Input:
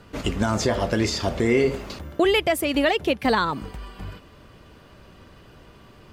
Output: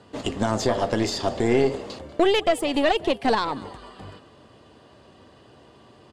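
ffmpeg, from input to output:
ffmpeg -i in.wav -filter_complex "[0:a]highpass=120,equalizer=frequency=170:width_type=q:width=4:gain=-8,equalizer=frequency=730:width_type=q:width=4:gain=3,equalizer=frequency=1400:width_type=q:width=4:gain=-7,equalizer=frequency=2300:width_type=q:width=4:gain=-8,equalizer=frequency=5800:width_type=q:width=4:gain=-5,lowpass=frequency=9300:width=0.5412,lowpass=frequency=9300:width=1.3066,asplit=5[link_01][link_02][link_03][link_04][link_05];[link_02]adelay=191,afreqshift=61,volume=-21dB[link_06];[link_03]adelay=382,afreqshift=122,volume=-26dB[link_07];[link_04]adelay=573,afreqshift=183,volume=-31.1dB[link_08];[link_05]adelay=764,afreqshift=244,volume=-36.1dB[link_09];[link_01][link_06][link_07][link_08][link_09]amix=inputs=5:normalize=0,aeval=exprs='0.355*(cos(1*acos(clip(val(0)/0.355,-1,1)))-cos(1*PI/2))+0.0398*(cos(4*acos(clip(val(0)/0.355,-1,1)))-cos(4*PI/2))':channel_layout=same" out.wav

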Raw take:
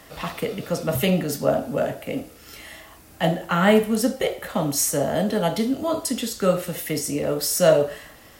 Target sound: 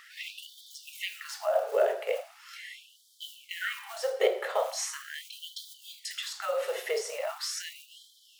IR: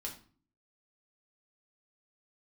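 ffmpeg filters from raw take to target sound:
-filter_complex "[0:a]aemphasis=mode=reproduction:type=bsi,acrossover=split=7400[link_01][link_02];[link_02]acompressor=threshold=-46dB:ratio=4:attack=1:release=60[link_03];[link_01][link_03]amix=inputs=2:normalize=0,acrusher=bits=8:mode=log:mix=0:aa=0.000001,bandreject=frequency=131.9:width_type=h:width=4,bandreject=frequency=263.8:width_type=h:width=4,bandreject=frequency=395.7:width_type=h:width=4,bandreject=frequency=527.6:width_type=h:width=4,bandreject=frequency=659.5:width_type=h:width=4,bandreject=frequency=791.4:width_type=h:width=4,bandreject=frequency=923.3:width_type=h:width=4,bandreject=frequency=1055.2:width_type=h:width=4,bandreject=frequency=1187.1:width_type=h:width=4,bandreject=frequency=1319:width_type=h:width=4,bandreject=frequency=1450.9:width_type=h:width=4,bandreject=frequency=1582.8:width_type=h:width=4,bandreject=frequency=1714.7:width_type=h:width=4,asplit=2[link_04][link_05];[1:a]atrim=start_sample=2205,asetrate=83790,aresample=44100[link_06];[link_05][link_06]afir=irnorm=-1:irlink=0,volume=-9dB[link_07];[link_04][link_07]amix=inputs=2:normalize=0,alimiter=limit=-12.5dB:level=0:latency=1:release=148,afftfilt=real='re*gte(b*sr/1024,360*pow(3100/360,0.5+0.5*sin(2*PI*0.4*pts/sr)))':imag='im*gte(b*sr/1024,360*pow(3100/360,0.5+0.5*sin(2*PI*0.4*pts/sr)))':win_size=1024:overlap=0.75"

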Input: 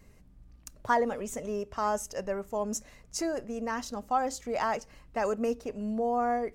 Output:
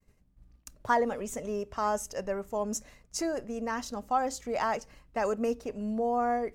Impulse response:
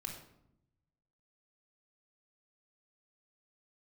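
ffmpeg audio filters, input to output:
-af "agate=range=-33dB:threshold=-48dB:ratio=3:detection=peak"

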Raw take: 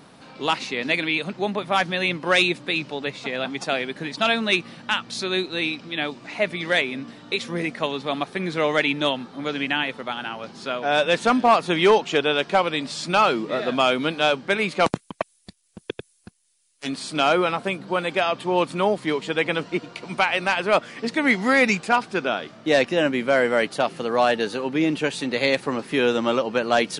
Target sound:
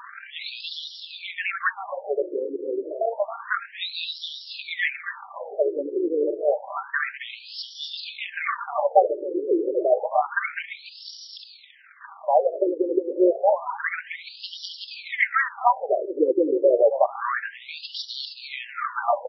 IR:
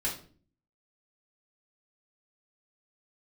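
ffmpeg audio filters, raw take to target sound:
-filter_complex "[0:a]aeval=exprs='val(0)+0.5*0.0237*sgn(val(0))':channel_layout=same,acrossover=split=3200[link_01][link_02];[link_02]acompressor=threshold=-35dB:ratio=4:attack=1:release=60[link_03];[link_01][link_03]amix=inputs=2:normalize=0,equalizer=frequency=2900:width=2:gain=-13.5,aecho=1:1:5.1:0.4,acrossover=split=4200[link_04][link_05];[link_04]tremolo=f=42:d=0.571[link_06];[link_05]acontrast=57[link_07];[link_06][link_07]amix=inputs=2:normalize=0,aeval=exprs='0.531*sin(PI/2*1.41*val(0)/0.531)':channel_layout=same,atempo=1.4,asplit=2[link_08][link_09];[link_09]aecho=0:1:271|542|813|1084:0.316|0.133|0.0558|0.0234[link_10];[link_08][link_10]amix=inputs=2:normalize=0,afftfilt=real='re*between(b*sr/1024,370*pow(4100/370,0.5+0.5*sin(2*PI*0.29*pts/sr))/1.41,370*pow(4100/370,0.5+0.5*sin(2*PI*0.29*pts/sr))*1.41)':imag='im*between(b*sr/1024,370*pow(4100/370,0.5+0.5*sin(2*PI*0.29*pts/sr))/1.41,370*pow(4100/370,0.5+0.5*sin(2*PI*0.29*pts/sr))*1.41)':win_size=1024:overlap=0.75"

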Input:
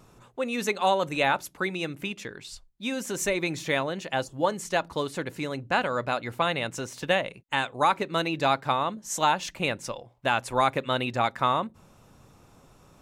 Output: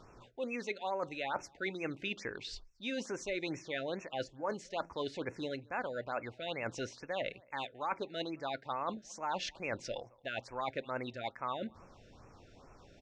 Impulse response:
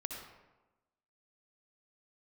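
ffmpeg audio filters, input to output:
-filter_complex "[0:a]lowpass=frequency=5500:width=0.5412,lowpass=frequency=5500:width=1.3066,equalizer=frequency=160:width_type=o:width=1.1:gain=-7.5,areverse,acompressor=threshold=-34dB:ratio=6,areverse,asplit=2[link_01][link_02];[link_02]adelay=221.6,volume=-27dB,highshelf=frequency=4000:gain=-4.99[link_03];[link_01][link_03]amix=inputs=2:normalize=0,afftfilt=real='re*(1-between(b*sr/1024,940*pow(3900/940,0.5+0.5*sin(2*PI*2.3*pts/sr))/1.41,940*pow(3900/940,0.5+0.5*sin(2*PI*2.3*pts/sr))*1.41))':imag='im*(1-between(b*sr/1024,940*pow(3900/940,0.5+0.5*sin(2*PI*2.3*pts/sr))/1.41,940*pow(3900/940,0.5+0.5*sin(2*PI*2.3*pts/sr))*1.41))':win_size=1024:overlap=0.75"

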